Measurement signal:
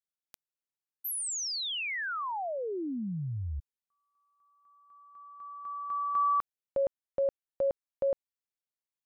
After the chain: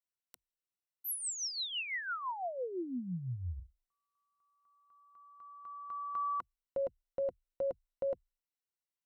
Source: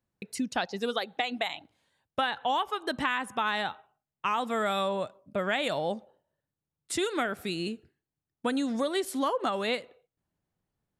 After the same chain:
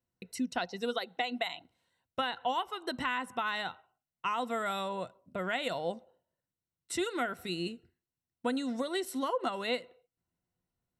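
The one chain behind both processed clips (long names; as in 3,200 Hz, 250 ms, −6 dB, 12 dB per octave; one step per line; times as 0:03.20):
EQ curve with evenly spaced ripples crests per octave 2, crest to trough 8 dB
level −5 dB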